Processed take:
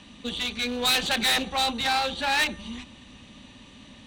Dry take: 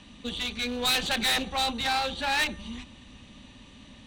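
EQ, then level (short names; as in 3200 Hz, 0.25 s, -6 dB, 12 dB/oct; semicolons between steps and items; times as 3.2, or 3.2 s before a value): low shelf 74 Hz -7.5 dB; +2.5 dB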